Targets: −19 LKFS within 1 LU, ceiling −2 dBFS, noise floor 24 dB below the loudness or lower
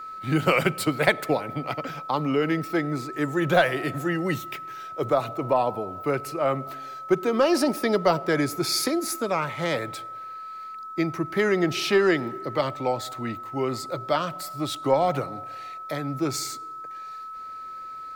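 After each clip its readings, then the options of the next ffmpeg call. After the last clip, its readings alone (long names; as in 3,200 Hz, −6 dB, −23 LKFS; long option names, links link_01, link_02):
interfering tone 1,300 Hz; level of the tone −35 dBFS; integrated loudness −25.5 LKFS; sample peak −6.0 dBFS; target loudness −19.0 LKFS
→ -af "bandreject=frequency=1300:width=30"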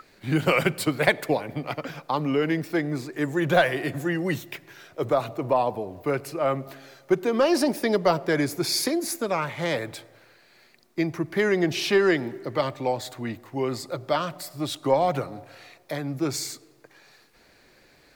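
interfering tone none found; integrated loudness −25.5 LKFS; sample peak −6.0 dBFS; target loudness −19.0 LKFS
→ -af "volume=6.5dB,alimiter=limit=-2dB:level=0:latency=1"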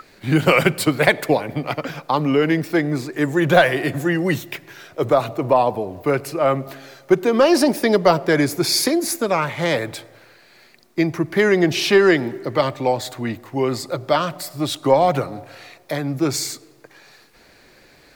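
integrated loudness −19.0 LKFS; sample peak −2.0 dBFS; background noise floor −51 dBFS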